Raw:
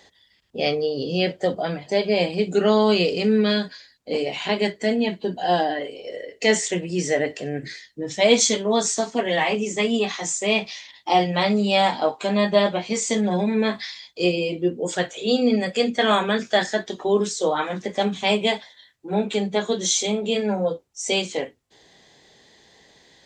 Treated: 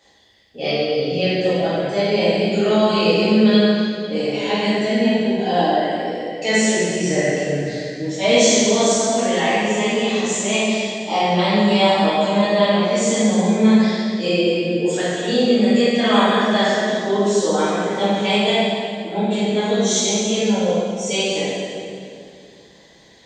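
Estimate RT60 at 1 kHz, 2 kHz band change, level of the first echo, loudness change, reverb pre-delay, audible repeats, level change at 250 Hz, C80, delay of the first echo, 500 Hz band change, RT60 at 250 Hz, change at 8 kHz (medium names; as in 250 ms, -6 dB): 2.2 s, +3.5 dB, no echo, +4.0 dB, 5 ms, no echo, +6.5 dB, -1.5 dB, no echo, +4.0 dB, 3.0 s, +3.5 dB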